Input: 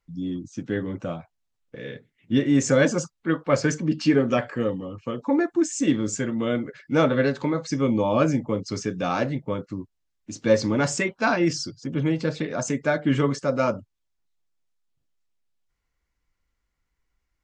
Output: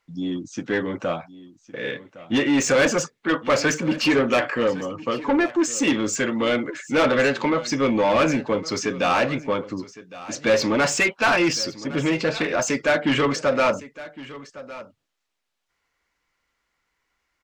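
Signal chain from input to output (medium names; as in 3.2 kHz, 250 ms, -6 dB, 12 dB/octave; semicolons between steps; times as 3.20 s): dynamic bell 2.6 kHz, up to +7 dB, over -49 dBFS, Q 3.3; overdrive pedal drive 23 dB, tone 4.1 kHz, clips at -4 dBFS; delay 1111 ms -17.5 dB; trim -5.5 dB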